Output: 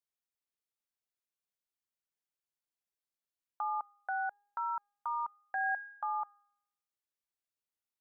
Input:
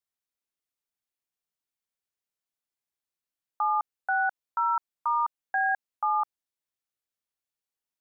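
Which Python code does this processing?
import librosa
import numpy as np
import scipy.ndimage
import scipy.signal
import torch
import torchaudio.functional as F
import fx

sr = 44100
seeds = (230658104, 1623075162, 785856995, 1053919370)

y = fx.dynamic_eq(x, sr, hz=1400.0, q=1.0, threshold_db=-40.0, ratio=4.0, max_db=-5)
y = fx.comb_fb(y, sr, f0_hz=410.0, decay_s=0.76, harmonics='all', damping=0.0, mix_pct=50)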